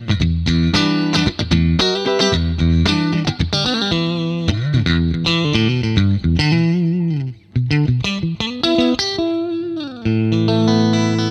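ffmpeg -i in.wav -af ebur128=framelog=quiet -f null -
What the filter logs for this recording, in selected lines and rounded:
Integrated loudness:
  I:         -16.9 LUFS
  Threshold: -26.9 LUFS
Loudness range:
  LRA:         2.2 LU
  Threshold: -37.1 LUFS
  LRA low:   -18.4 LUFS
  LRA high:  -16.1 LUFS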